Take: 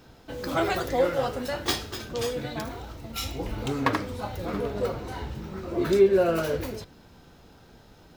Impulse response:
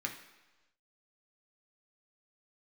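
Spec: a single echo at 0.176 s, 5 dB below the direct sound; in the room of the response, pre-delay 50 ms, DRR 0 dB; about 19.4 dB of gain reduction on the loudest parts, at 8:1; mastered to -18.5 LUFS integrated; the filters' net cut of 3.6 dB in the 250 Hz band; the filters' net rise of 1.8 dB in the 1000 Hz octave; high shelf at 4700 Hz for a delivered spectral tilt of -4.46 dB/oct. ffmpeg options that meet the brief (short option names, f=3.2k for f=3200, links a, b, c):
-filter_complex "[0:a]equalizer=f=250:t=o:g=-6,equalizer=f=1k:t=o:g=3,highshelf=f=4.7k:g=-3.5,acompressor=threshold=-36dB:ratio=8,aecho=1:1:176:0.562,asplit=2[a][b];[1:a]atrim=start_sample=2205,adelay=50[c];[b][c]afir=irnorm=-1:irlink=0,volume=-2.5dB[d];[a][d]amix=inputs=2:normalize=0,volume=18dB"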